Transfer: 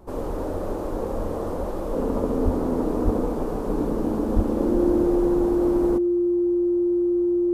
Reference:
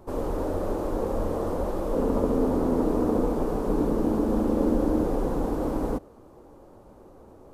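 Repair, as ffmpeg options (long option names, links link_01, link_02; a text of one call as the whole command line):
ffmpeg -i in.wav -filter_complex "[0:a]bandreject=frequency=63.4:width_type=h:width=4,bandreject=frequency=126.8:width_type=h:width=4,bandreject=frequency=190.2:width_type=h:width=4,bandreject=frequency=253.6:width_type=h:width=4,bandreject=frequency=317:width_type=h:width=4,bandreject=frequency=350:width=30,asplit=3[link_01][link_02][link_03];[link_01]afade=type=out:start_time=2.44:duration=0.02[link_04];[link_02]highpass=frequency=140:width=0.5412,highpass=frequency=140:width=1.3066,afade=type=in:start_time=2.44:duration=0.02,afade=type=out:start_time=2.56:duration=0.02[link_05];[link_03]afade=type=in:start_time=2.56:duration=0.02[link_06];[link_04][link_05][link_06]amix=inputs=3:normalize=0,asplit=3[link_07][link_08][link_09];[link_07]afade=type=out:start_time=3.04:duration=0.02[link_10];[link_08]highpass=frequency=140:width=0.5412,highpass=frequency=140:width=1.3066,afade=type=in:start_time=3.04:duration=0.02,afade=type=out:start_time=3.16:duration=0.02[link_11];[link_09]afade=type=in:start_time=3.16:duration=0.02[link_12];[link_10][link_11][link_12]amix=inputs=3:normalize=0,asplit=3[link_13][link_14][link_15];[link_13]afade=type=out:start_time=4.35:duration=0.02[link_16];[link_14]highpass=frequency=140:width=0.5412,highpass=frequency=140:width=1.3066,afade=type=in:start_time=4.35:duration=0.02,afade=type=out:start_time=4.47:duration=0.02[link_17];[link_15]afade=type=in:start_time=4.47:duration=0.02[link_18];[link_16][link_17][link_18]amix=inputs=3:normalize=0" out.wav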